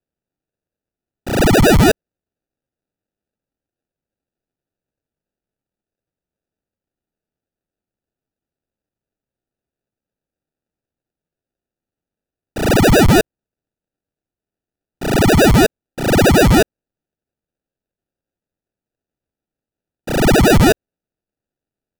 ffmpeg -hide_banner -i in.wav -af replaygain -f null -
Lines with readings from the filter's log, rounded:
track_gain = -4.2 dB
track_peak = 0.285